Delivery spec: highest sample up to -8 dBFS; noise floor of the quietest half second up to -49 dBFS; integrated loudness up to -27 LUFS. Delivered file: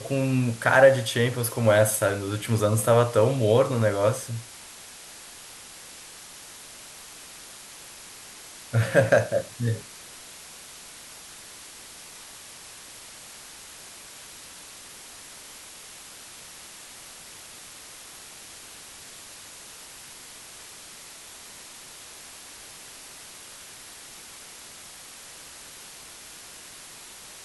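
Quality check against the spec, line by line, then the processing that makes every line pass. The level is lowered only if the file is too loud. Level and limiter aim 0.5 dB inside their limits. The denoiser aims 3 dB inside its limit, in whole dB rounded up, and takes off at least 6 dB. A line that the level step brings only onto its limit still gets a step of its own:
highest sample -5.5 dBFS: fail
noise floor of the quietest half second -45 dBFS: fail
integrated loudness -22.5 LUFS: fail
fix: gain -5 dB

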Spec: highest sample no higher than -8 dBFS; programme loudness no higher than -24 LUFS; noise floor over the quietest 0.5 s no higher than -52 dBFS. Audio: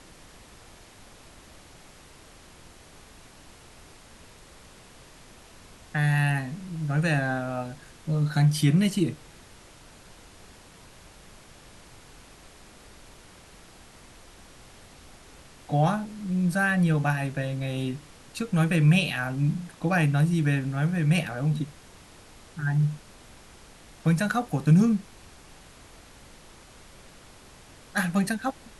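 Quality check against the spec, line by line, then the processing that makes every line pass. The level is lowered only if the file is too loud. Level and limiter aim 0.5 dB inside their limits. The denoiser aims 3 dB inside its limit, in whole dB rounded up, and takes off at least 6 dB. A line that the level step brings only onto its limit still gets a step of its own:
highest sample -10.0 dBFS: OK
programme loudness -25.5 LUFS: OK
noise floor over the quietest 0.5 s -50 dBFS: fail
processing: denoiser 6 dB, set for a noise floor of -50 dBFS

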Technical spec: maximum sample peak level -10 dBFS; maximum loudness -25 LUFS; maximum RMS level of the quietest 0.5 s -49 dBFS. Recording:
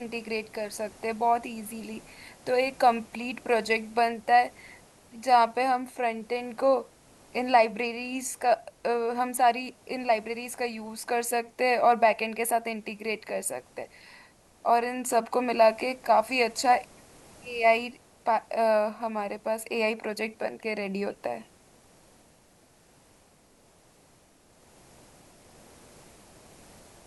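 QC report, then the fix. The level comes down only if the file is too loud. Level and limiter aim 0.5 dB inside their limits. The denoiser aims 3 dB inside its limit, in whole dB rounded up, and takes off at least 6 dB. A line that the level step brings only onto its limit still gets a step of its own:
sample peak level -8.5 dBFS: fail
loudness -27.0 LUFS: OK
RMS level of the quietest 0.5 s -60 dBFS: OK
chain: limiter -10.5 dBFS

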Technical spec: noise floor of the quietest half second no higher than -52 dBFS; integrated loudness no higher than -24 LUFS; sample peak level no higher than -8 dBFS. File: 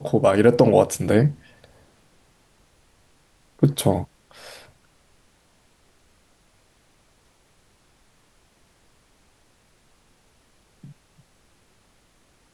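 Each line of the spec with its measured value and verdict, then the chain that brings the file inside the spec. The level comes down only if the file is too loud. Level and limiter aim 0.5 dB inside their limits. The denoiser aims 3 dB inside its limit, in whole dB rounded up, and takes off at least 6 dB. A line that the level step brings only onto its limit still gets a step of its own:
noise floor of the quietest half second -60 dBFS: OK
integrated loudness -19.0 LUFS: fail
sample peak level -3.0 dBFS: fail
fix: gain -5.5 dB

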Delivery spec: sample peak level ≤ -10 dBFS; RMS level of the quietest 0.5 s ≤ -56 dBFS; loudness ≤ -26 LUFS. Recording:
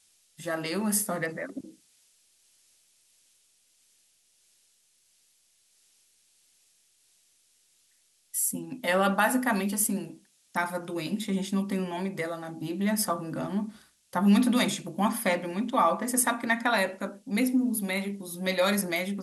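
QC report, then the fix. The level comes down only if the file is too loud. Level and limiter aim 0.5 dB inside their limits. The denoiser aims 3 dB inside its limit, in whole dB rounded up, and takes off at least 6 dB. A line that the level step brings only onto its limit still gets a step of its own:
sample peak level -11.0 dBFS: OK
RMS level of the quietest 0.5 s -67 dBFS: OK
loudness -28.0 LUFS: OK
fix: none

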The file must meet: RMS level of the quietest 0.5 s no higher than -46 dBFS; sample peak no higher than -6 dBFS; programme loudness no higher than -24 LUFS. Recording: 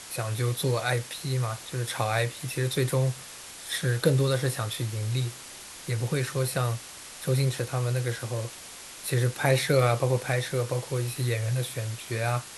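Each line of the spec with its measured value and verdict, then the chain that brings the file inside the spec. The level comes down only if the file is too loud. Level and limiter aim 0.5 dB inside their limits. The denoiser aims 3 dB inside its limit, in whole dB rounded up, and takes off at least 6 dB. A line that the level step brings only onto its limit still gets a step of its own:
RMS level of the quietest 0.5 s -44 dBFS: fail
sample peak -8.5 dBFS: OK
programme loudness -28.0 LUFS: OK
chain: denoiser 6 dB, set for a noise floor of -44 dBFS

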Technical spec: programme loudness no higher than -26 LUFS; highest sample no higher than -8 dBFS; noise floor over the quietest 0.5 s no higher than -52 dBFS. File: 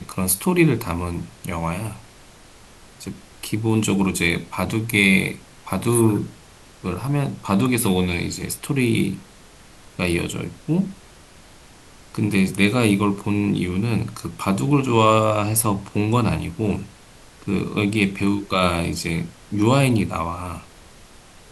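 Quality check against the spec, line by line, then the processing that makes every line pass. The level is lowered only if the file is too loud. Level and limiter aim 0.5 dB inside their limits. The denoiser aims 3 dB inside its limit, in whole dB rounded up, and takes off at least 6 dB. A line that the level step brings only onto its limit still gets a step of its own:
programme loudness -21.0 LUFS: fail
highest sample -2.0 dBFS: fail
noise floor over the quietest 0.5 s -47 dBFS: fail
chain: gain -5.5 dB; limiter -8.5 dBFS

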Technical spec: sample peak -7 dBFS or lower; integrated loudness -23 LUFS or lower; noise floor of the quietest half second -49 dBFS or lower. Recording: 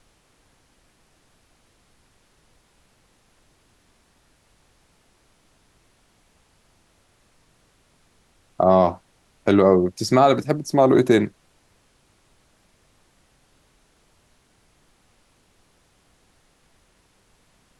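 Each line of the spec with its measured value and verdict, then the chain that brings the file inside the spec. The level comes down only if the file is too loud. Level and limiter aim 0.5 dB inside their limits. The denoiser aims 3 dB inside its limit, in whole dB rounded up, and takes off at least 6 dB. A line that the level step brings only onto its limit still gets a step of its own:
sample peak -4.5 dBFS: fail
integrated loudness -18.5 LUFS: fail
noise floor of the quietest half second -61 dBFS: OK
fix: gain -5 dB

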